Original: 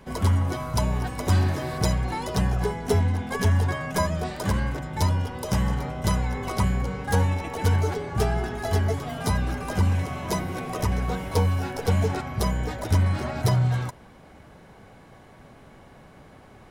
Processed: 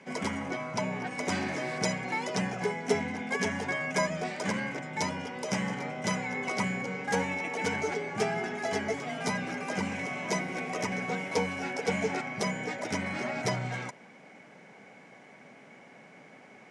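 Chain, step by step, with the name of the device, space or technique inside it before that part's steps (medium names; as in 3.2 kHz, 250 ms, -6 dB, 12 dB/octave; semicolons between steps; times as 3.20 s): television speaker (cabinet simulation 180–8400 Hz, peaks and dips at 340 Hz -4 dB, 1.1 kHz -5 dB, 2.2 kHz +10 dB, 3.9 kHz -5 dB, 6 kHz +3 dB); 0.48–1.11 s: treble shelf 5.2 kHz -9.5 dB; trim -2 dB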